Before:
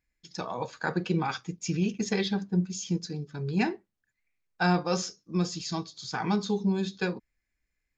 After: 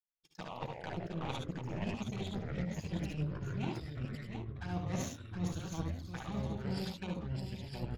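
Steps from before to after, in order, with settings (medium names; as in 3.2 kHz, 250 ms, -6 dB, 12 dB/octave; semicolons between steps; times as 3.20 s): low-pass 2.1 kHz 6 dB/octave; peaking EQ 420 Hz -11 dB 1.1 oct; reverse; compression 20:1, threshold -40 dBFS, peak gain reduction 18 dB; reverse; power-law waveshaper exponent 2; touch-sensitive flanger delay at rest 2.9 ms, full sweep at -51.5 dBFS; multi-tap echo 60/73/717 ms -8.5/-5/-6.5 dB; ever faster or slower copies 90 ms, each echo -5 st, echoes 3; trim +11.5 dB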